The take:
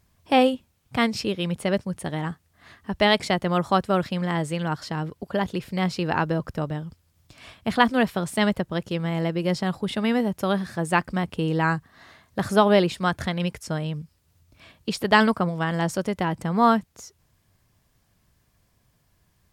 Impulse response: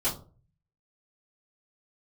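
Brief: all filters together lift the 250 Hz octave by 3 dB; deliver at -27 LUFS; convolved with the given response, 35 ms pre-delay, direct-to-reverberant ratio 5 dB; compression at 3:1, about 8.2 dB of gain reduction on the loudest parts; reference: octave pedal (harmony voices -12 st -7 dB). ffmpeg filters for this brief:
-filter_complex "[0:a]equalizer=f=250:t=o:g=4,acompressor=threshold=0.0794:ratio=3,asplit=2[s0][s1];[1:a]atrim=start_sample=2205,adelay=35[s2];[s1][s2]afir=irnorm=-1:irlink=0,volume=0.211[s3];[s0][s3]amix=inputs=2:normalize=0,asplit=2[s4][s5];[s5]asetrate=22050,aresample=44100,atempo=2,volume=0.447[s6];[s4][s6]amix=inputs=2:normalize=0,volume=0.794"

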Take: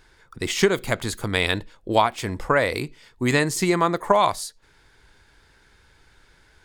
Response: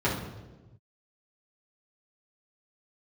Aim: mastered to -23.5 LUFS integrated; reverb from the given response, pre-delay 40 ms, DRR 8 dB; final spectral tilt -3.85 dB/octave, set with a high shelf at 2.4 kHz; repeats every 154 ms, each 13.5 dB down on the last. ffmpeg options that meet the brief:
-filter_complex "[0:a]highshelf=f=2400:g=6.5,aecho=1:1:154|308:0.211|0.0444,asplit=2[s0][s1];[1:a]atrim=start_sample=2205,adelay=40[s2];[s1][s2]afir=irnorm=-1:irlink=0,volume=0.0891[s3];[s0][s3]amix=inputs=2:normalize=0,volume=0.668"

